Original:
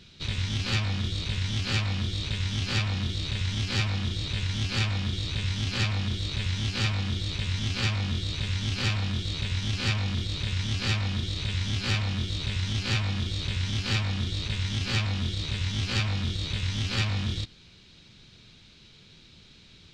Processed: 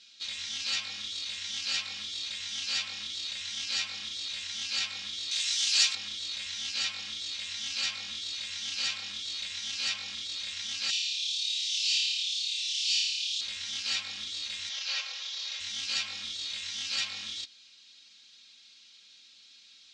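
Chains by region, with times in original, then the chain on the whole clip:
0:05.31–0:05.95: RIAA equalisation recording + double-tracking delay 18 ms −7.5 dB
0:10.90–0:13.41: Butterworth high-pass 2,600 Hz + flutter between parallel walls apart 4.8 metres, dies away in 1.1 s
0:14.69–0:15.60: variable-slope delta modulation 32 kbit/s + Butterworth high-pass 460 Hz 96 dB per octave
whole clip: low-pass filter 7,400 Hz 24 dB per octave; first difference; comb filter 3.7 ms, depth 78%; level +4 dB

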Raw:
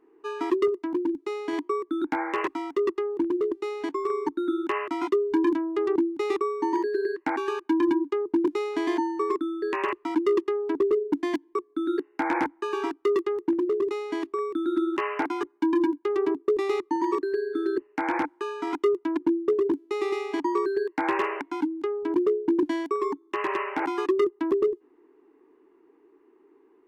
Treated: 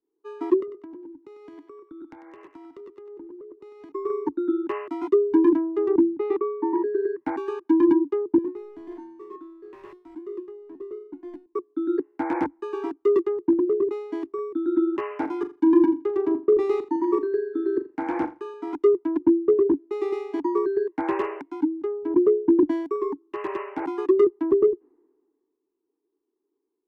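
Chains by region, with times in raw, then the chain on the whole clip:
0:00.60–0:03.92: downward compressor 12 to 1, threshold −33 dBFS + feedback echo with a high-pass in the loop 97 ms, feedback 40%, high-pass 580 Hz, level −7.5 dB
0:06.00–0:07.23: low-pass filter 2,600 Hz + hum removal 48.21 Hz, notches 5
0:08.38–0:11.46: power curve on the samples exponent 0.7 + tuned comb filter 360 Hz, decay 0.55 s, mix 80%
0:15.07–0:18.54: double-tracking delay 40 ms −11 dB + repeating echo 83 ms, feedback 18%, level −16.5 dB
whole clip: tilt shelving filter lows +8.5 dB, about 1,300 Hz; multiband upward and downward expander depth 70%; level −4.5 dB

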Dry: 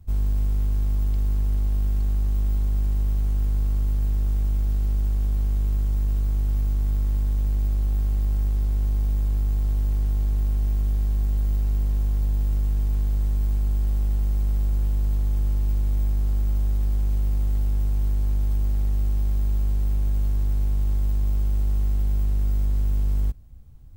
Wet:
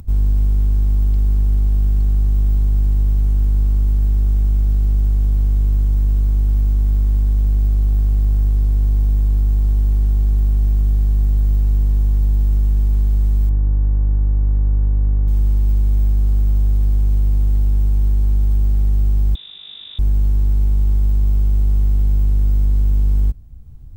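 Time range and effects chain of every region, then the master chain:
0:13.49–0:15.28: Savitzky-Golay smoothing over 41 samples + windowed peak hold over 65 samples
0:19.35–0:19.99: high-pass filter 120 Hz 24 dB per octave + voice inversion scrambler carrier 3,700 Hz
whole clip: low-shelf EQ 400 Hz +7.5 dB; notch filter 570 Hz, Q 12; upward compression, threshold −31 dBFS

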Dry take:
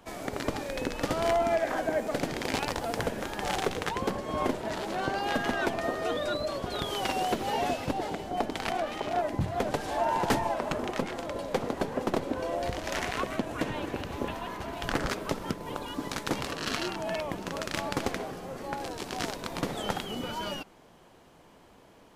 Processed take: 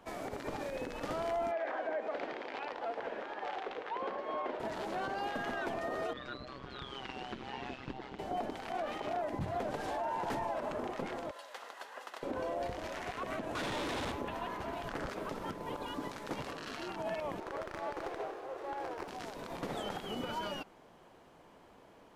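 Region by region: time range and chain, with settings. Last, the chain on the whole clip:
0:01.51–0:04.60: low-pass filter 10,000 Hz + three-way crossover with the lows and the highs turned down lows −23 dB, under 310 Hz, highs −23 dB, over 4,100 Hz
0:06.13–0:08.19: low-pass filter 3,900 Hz + parametric band 600 Hz −15 dB 1.1 octaves + amplitude modulation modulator 130 Hz, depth 70%
0:11.31–0:12.23: high-pass filter 1,400 Hz + notch filter 2,300 Hz, Q 10
0:13.55–0:14.12: sign of each sample alone + low-pass filter 9,100 Hz + parametric band 3,600 Hz +5.5 dB 0.35 octaves
0:17.40–0:19.08: Butterworth high-pass 310 Hz 72 dB per octave + high-shelf EQ 6,700 Hz −9.5 dB + windowed peak hold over 9 samples
whole clip: low-shelf EQ 290 Hz −6.5 dB; brickwall limiter −27.5 dBFS; high-shelf EQ 2,700 Hz −8.5 dB

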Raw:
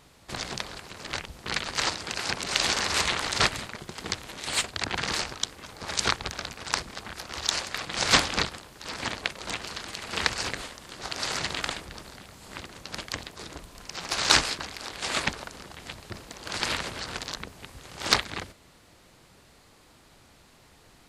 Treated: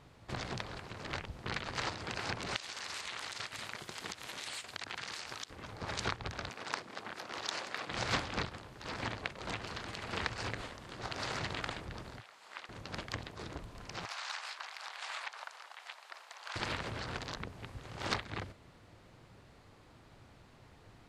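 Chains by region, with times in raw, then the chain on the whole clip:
0:02.56–0:05.50: spectral tilt +3.5 dB per octave + downward compressor 8 to 1, threshold −30 dBFS
0:06.49–0:07.90: high-pass filter 250 Hz + one half of a high-frequency compander encoder only
0:12.20–0:12.69: high-pass filter 890 Hz + high-shelf EQ 11,000 Hz −7.5 dB
0:14.05–0:16.56: high-pass filter 770 Hz 24 dB per octave + downward compressor 4 to 1, threshold −32 dBFS
whole clip: low-pass filter 2,100 Hz 6 dB per octave; parametric band 110 Hz +7.5 dB 0.52 octaves; downward compressor 2 to 1, threshold −34 dBFS; level −2 dB

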